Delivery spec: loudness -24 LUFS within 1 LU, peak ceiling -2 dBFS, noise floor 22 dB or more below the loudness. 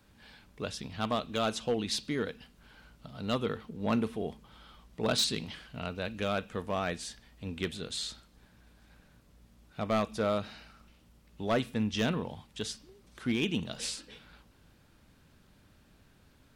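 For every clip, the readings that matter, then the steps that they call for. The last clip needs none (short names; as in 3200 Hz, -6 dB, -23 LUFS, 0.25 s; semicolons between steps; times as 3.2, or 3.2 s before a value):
clipped 0.3%; flat tops at -21.5 dBFS; loudness -33.5 LUFS; peak -21.5 dBFS; loudness target -24.0 LUFS
-> clip repair -21.5 dBFS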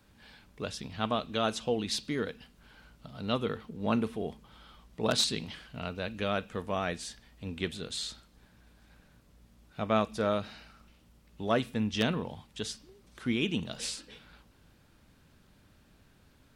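clipped 0.0%; loudness -33.0 LUFS; peak -12.5 dBFS; loudness target -24.0 LUFS
-> gain +9 dB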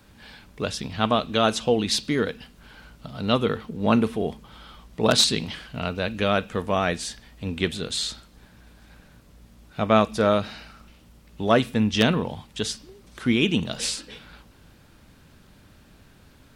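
loudness -24.0 LUFS; peak -3.5 dBFS; noise floor -54 dBFS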